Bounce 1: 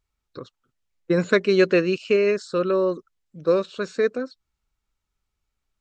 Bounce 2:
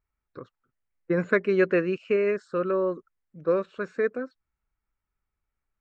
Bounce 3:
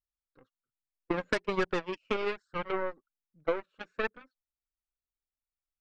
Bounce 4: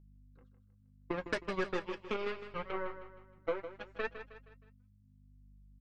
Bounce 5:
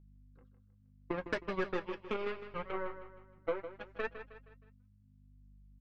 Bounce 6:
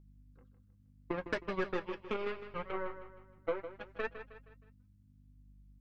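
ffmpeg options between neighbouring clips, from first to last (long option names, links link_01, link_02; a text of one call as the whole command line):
ffmpeg -i in.wav -af "highshelf=frequency=2800:width_type=q:width=1.5:gain=-12,volume=-4.5dB" out.wav
ffmpeg -i in.wav -af "aeval=exprs='0.355*(cos(1*acos(clip(val(0)/0.355,-1,1)))-cos(1*PI/2))+0.1*(cos(2*acos(clip(val(0)/0.355,-1,1)))-cos(2*PI/2))+0.0126*(cos(4*acos(clip(val(0)/0.355,-1,1)))-cos(4*PI/2))+0.00631*(cos(6*acos(clip(val(0)/0.355,-1,1)))-cos(6*PI/2))+0.0562*(cos(7*acos(clip(val(0)/0.355,-1,1)))-cos(7*PI/2))':channel_layout=same,flanger=delay=0.6:depth=3.2:regen=47:speed=1.2:shape=sinusoidal,acompressor=threshold=-30dB:ratio=5,volume=4.5dB" out.wav
ffmpeg -i in.wav -filter_complex "[0:a]aeval=exprs='val(0)+0.00224*(sin(2*PI*50*n/s)+sin(2*PI*2*50*n/s)/2+sin(2*PI*3*50*n/s)/3+sin(2*PI*4*50*n/s)/4+sin(2*PI*5*50*n/s)/5)':channel_layout=same,flanger=delay=5.9:depth=4.4:regen=-54:speed=0.71:shape=triangular,asplit=2[link_01][link_02];[link_02]aecho=0:1:157|314|471|628:0.282|0.121|0.0521|0.0224[link_03];[link_01][link_03]amix=inputs=2:normalize=0,volume=-1.5dB" out.wav
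ffmpeg -i in.wav -af "adynamicsmooth=sensitivity=1.5:basefreq=4500" out.wav
ffmpeg -i in.wav -af "aeval=exprs='val(0)+0.000282*(sin(2*PI*60*n/s)+sin(2*PI*2*60*n/s)/2+sin(2*PI*3*60*n/s)/3+sin(2*PI*4*60*n/s)/4+sin(2*PI*5*60*n/s)/5)':channel_layout=same" out.wav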